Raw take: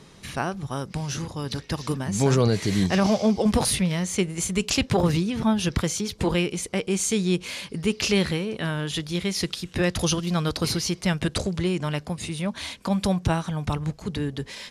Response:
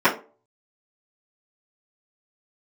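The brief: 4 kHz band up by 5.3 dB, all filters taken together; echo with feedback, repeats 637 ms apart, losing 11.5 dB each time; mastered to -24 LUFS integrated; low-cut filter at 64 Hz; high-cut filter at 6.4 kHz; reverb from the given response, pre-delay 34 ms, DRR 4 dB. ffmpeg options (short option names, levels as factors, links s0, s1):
-filter_complex "[0:a]highpass=64,lowpass=6400,equalizer=f=4000:t=o:g=7.5,aecho=1:1:637|1274|1911:0.266|0.0718|0.0194,asplit=2[s0][s1];[1:a]atrim=start_sample=2205,adelay=34[s2];[s1][s2]afir=irnorm=-1:irlink=0,volume=0.0531[s3];[s0][s3]amix=inputs=2:normalize=0,volume=0.891"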